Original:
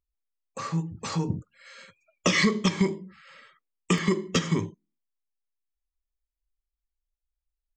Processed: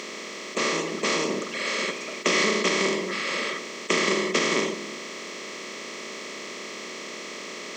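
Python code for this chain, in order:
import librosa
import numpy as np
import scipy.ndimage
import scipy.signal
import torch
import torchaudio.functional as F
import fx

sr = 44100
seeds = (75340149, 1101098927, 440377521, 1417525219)

y = fx.bin_compress(x, sr, power=0.2)
y = scipy.signal.sosfilt(scipy.signal.butter(4, 270.0, 'highpass', fs=sr, output='sos'), y)
y = y * librosa.db_to_amplitude(-4.0)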